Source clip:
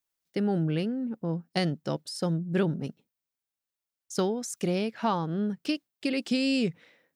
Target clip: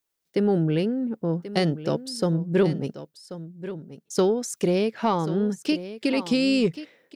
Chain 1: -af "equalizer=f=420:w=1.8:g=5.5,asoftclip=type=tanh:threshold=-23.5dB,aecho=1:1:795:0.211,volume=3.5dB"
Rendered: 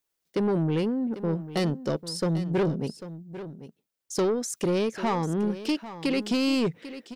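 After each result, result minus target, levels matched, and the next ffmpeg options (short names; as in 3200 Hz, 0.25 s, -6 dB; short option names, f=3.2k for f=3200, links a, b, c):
soft clip: distortion +16 dB; echo 0.29 s early
-af "equalizer=f=420:w=1.8:g=5.5,asoftclip=type=tanh:threshold=-12dB,aecho=1:1:795:0.211,volume=3.5dB"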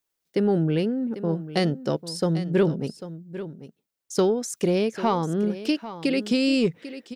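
echo 0.29 s early
-af "equalizer=f=420:w=1.8:g=5.5,asoftclip=type=tanh:threshold=-12dB,aecho=1:1:1085:0.211,volume=3.5dB"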